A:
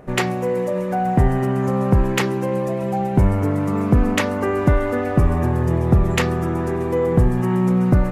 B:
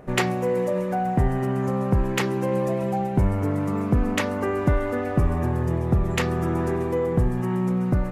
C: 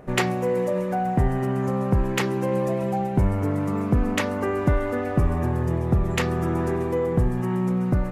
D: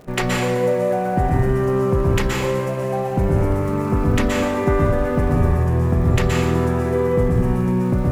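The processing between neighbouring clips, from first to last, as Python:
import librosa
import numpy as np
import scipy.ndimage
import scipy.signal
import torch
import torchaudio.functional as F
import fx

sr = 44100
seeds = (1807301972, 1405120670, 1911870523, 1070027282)

y1 = fx.rider(x, sr, range_db=10, speed_s=0.5)
y1 = y1 * 10.0 ** (-4.5 / 20.0)
y2 = y1
y3 = fx.dmg_crackle(y2, sr, seeds[0], per_s=87.0, level_db=-36.0)
y3 = fx.rev_plate(y3, sr, seeds[1], rt60_s=1.1, hf_ratio=0.9, predelay_ms=110, drr_db=-2.5)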